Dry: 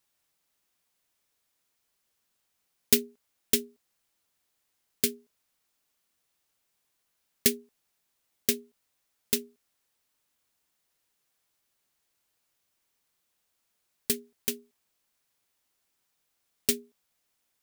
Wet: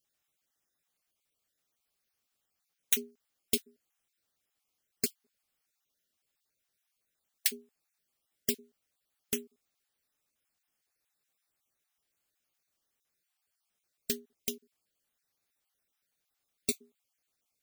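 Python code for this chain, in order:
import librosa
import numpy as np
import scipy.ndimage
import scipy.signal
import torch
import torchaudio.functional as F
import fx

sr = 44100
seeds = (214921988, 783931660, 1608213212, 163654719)

y = fx.spec_dropout(x, sr, seeds[0], share_pct=28)
y = fx.notch(y, sr, hz=970.0, q=8.2)
y = y * 10.0 ** (-4.0 / 20.0)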